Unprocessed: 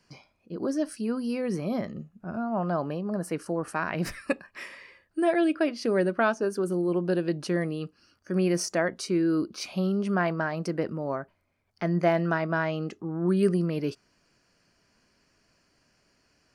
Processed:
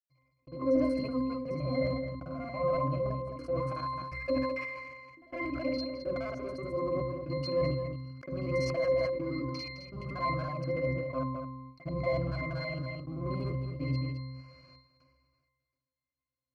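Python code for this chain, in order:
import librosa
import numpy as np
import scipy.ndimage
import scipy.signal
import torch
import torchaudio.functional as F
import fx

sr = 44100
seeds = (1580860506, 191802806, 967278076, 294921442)

p1 = fx.local_reverse(x, sr, ms=47.0)
p2 = scipy.signal.sosfilt(scipy.signal.butter(2, 78.0, 'highpass', fs=sr, output='sos'), p1)
p3 = fx.peak_eq(p2, sr, hz=230.0, db=-12.0, octaves=1.8)
p4 = fx.hum_notches(p3, sr, base_hz=60, count=10)
p5 = fx.leveller(p4, sr, passes=5)
p6 = fx.step_gate(p5, sr, bpm=62, pattern='.xxxx.xx', floor_db=-24.0, edge_ms=4.5)
p7 = fx.octave_resonator(p6, sr, note='C', decay_s=0.38)
p8 = p7 + fx.echo_single(p7, sr, ms=214, db=-14.5, dry=0)
p9 = fx.sustainer(p8, sr, db_per_s=33.0)
y = p9 * 10.0 ** (4.5 / 20.0)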